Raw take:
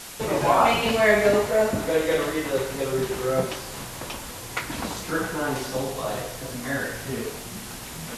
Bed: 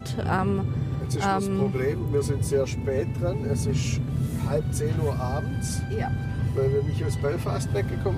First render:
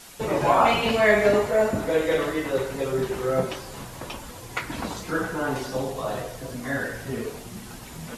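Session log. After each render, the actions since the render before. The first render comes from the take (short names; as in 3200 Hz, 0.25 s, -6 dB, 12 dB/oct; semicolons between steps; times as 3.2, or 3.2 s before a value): denoiser 7 dB, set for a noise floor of -38 dBFS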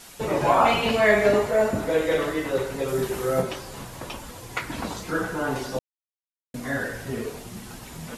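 2.88–3.42 high shelf 7200 Hz +9 dB; 5.79–6.54 mute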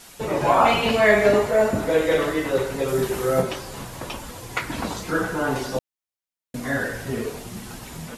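AGC gain up to 3 dB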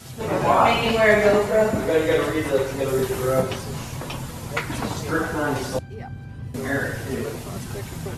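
add bed -8 dB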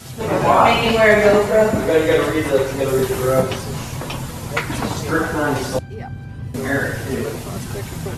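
gain +4.5 dB; limiter -1 dBFS, peak gain reduction 1.5 dB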